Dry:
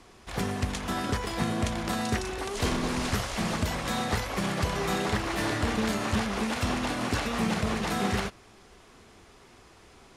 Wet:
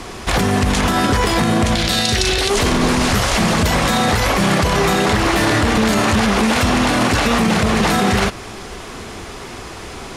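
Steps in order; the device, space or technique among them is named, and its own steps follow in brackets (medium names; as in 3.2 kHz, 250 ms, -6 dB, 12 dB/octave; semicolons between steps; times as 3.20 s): loud club master (compression 1.5:1, threshold -33 dBFS, peak gain reduction 4 dB; hard clipper -19 dBFS, distortion -55 dB; loudness maximiser +28.5 dB); 1.75–2.50 s: graphic EQ 250/1000/4000 Hz -7/-9/+9 dB; trim -6 dB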